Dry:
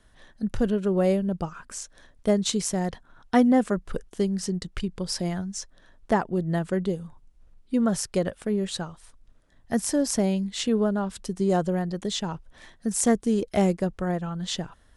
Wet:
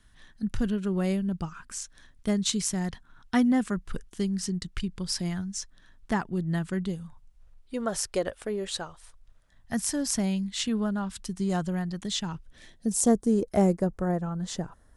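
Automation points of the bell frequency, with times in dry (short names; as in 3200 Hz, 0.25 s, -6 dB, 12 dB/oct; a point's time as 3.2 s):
bell -12 dB 1.3 oct
6.76 s 550 Hz
8.03 s 170 Hz
8.73 s 170 Hz
9.84 s 480 Hz
12.2 s 480 Hz
13.33 s 3100 Hz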